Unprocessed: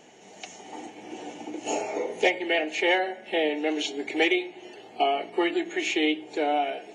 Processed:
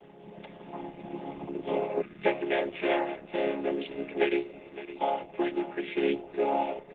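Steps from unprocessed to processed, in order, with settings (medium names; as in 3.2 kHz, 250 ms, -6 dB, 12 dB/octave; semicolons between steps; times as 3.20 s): vocoder on a held chord major triad, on C#3; time-frequency box 2.02–2.26 s, 220–1200 Hz -27 dB; gain riding within 4 dB 2 s; feedback delay 562 ms, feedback 40%, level -13 dB; resampled via 8 kHz; trim -1.5 dB; Opus 12 kbps 48 kHz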